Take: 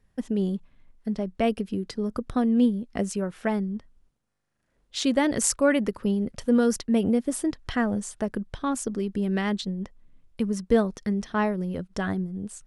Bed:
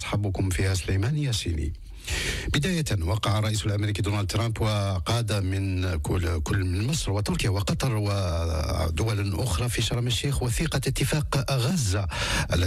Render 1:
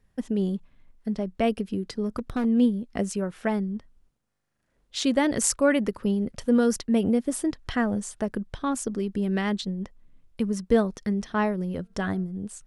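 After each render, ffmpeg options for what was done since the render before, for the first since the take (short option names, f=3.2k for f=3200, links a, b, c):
-filter_complex "[0:a]asettb=1/sr,asplit=3[a][b][c];[a]atrim=end=2.044[d];[b]atrim=start=2.04:end=2.45,asetpts=PTS-STARTPTS,afade=t=in:d=0.004:c=qsin,afade=t=out:st=0.406:d=0.004:c=qsin,asoftclip=type=hard:threshold=-22dB[e];[c]atrim=start=2.446[f];[d][e]acrossfade=d=0.004:c1=hsin:c2=qsin[g];[g][f]acrossfade=d=0.004:c1=qsin:c2=hsin,asettb=1/sr,asplit=3[h][i][j];[h]atrim=end=11.804[k];[i]atrim=start=11.8:end=12.24,asetpts=PTS-STARTPTS,afade=t=in:d=0.004:c=qsin,afade=t=out:st=0.436:d=0.004:c=qsin,bandreject=f=226.8:t=h:w=4,bandreject=f=453.6:t=h:w=4,bandreject=f=680.4:t=h:w=4,bandreject=f=907.2:t=h:w=4,bandreject=f=1.134k:t=h:w=4,bandreject=f=1.3608k:t=h:w=4,bandreject=f=1.5876k:t=h:w=4[l];[j]atrim=start=12.236[m];[k][l]acrossfade=d=0.004:c1=hsin:c2=qsin[n];[n][m]acrossfade=d=0.004:c1=qsin:c2=hsin"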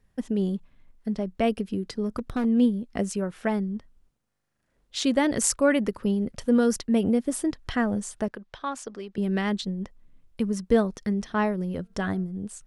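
-filter_complex "[0:a]asettb=1/sr,asplit=3[a][b][c];[a]atrim=end=8.284[d];[b]atrim=start=8.28:end=9.18,asetpts=PTS-STARTPTS,afade=t=in:d=0.004:c=qsin,afade=t=out:st=0.896:d=0.004:c=qsin,acrossover=split=480 6300:gain=0.2 1 0.2[e][f][g];[e][f][g]amix=inputs=3:normalize=0[h];[c]atrim=start=9.176[i];[d][h]acrossfade=d=0.004:c1=hsin:c2=qsin[j];[j][i]acrossfade=d=0.004:c1=qsin:c2=hsin"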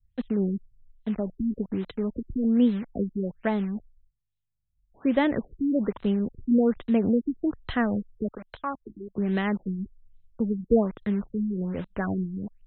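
-filter_complex "[0:a]acrossover=split=120|3400[a][b][c];[b]acrusher=bits=6:mix=0:aa=0.000001[d];[a][d][c]amix=inputs=3:normalize=0,afftfilt=real='re*lt(b*sr/1024,350*pow(4200/350,0.5+0.5*sin(2*PI*1.2*pts/sr)))':imag='im*lt(b*sr/1024,350*pow(4200/350,0.5+0.5*sin(2*PI*1.2*pts/sr)))':win_size=1024:overlap=0.75"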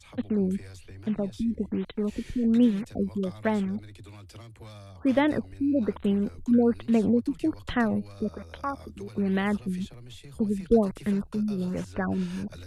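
-filter_complex "[1:a]volume=-20.5dB[a];[0:a][a]amix=inputs=2:normalize=0"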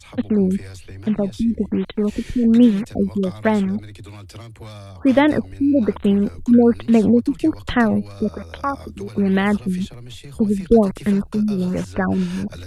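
-af "volume=8.5dB,alimiter=limit=-3dB:level=0:latency=1"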